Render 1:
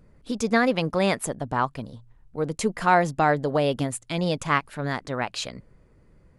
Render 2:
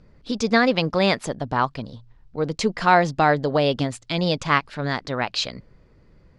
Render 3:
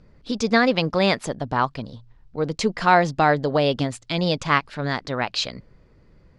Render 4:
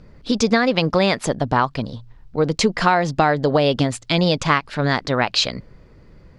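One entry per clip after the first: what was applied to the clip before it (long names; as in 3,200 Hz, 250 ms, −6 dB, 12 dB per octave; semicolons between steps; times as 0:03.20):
low-pass with resonance 4,800 Hz, resonance Q 1.9; level +2.5 dB
no processing that can be heard
downward compressor 10 to 1, threshold −19 dBFS, peak gain reduction 9.5 dB; level +7 dB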